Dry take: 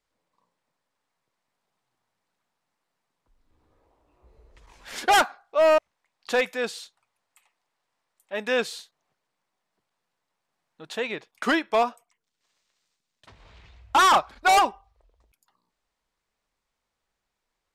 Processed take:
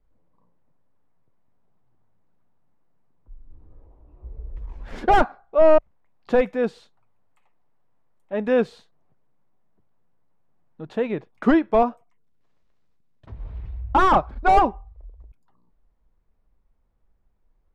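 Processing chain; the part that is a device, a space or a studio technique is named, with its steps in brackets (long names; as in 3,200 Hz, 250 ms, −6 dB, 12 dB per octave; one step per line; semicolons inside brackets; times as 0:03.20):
spectral tilt −4.5 dB per octave
behind a face mask (high-shelf EQ 2,600 Hz −7 dB)
level +1.5 dB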